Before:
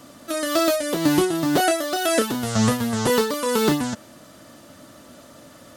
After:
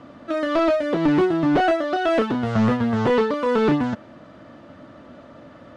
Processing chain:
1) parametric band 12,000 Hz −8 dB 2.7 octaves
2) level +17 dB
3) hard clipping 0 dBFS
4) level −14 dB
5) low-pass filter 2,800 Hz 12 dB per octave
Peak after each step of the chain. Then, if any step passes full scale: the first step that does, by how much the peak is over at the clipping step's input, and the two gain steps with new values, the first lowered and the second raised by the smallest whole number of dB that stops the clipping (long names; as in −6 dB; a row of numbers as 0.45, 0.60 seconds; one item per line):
−7.5, +9.5, 0.0, −14.0, −13.5 dBFS
step 2, 9.5 dB
step 2 +7 dB, step 4 −4 dB